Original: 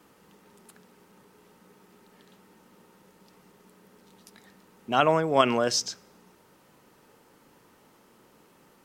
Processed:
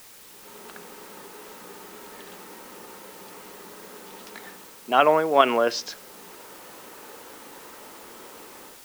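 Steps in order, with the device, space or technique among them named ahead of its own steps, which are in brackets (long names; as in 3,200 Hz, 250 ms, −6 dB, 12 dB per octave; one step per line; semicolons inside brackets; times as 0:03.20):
dictaphone (band-pass filter 330–3,200 Hz; automatic gain control gain up to 16 dB; tape wow and flutter; white noise bed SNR 19 dB)
level −1 dB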